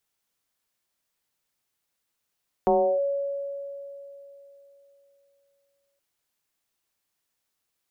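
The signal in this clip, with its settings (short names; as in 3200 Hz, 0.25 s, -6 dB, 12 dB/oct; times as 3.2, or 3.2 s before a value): FM tone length 3.32 s, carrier 560 Hz, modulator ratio 0.32, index 1.7, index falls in 0.33 s linear, decay 3.39 s, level -16 dB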